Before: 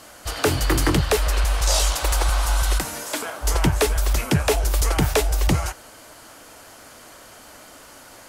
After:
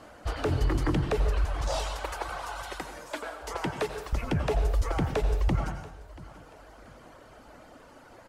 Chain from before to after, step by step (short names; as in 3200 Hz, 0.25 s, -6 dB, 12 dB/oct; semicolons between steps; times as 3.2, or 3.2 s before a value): LPF 1000 Hz 6 dB/oct; reverb removal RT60 1.5 s; 1.76–4.13 HPF 710 Hz 6 dB/oct; limiter -19 dBFS, peak gain reduction 10 dB; feedback echo 0.684 s, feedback 37%, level -19.5 dB; plate-style reverb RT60 0.83 s, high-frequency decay 0.95×, pre-delay 75 ms, DRR 7 dB; Doppler distortion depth 0.12 ms